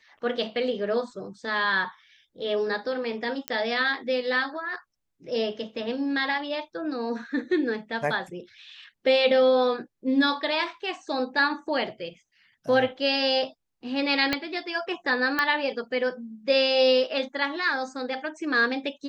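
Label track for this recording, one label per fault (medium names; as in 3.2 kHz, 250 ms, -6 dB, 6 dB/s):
3.480000	3.480000	pop -12 dBFS
14.330000	14.330000	pop -10 dBFS
15.390000	15.390000	pop -10 dBFS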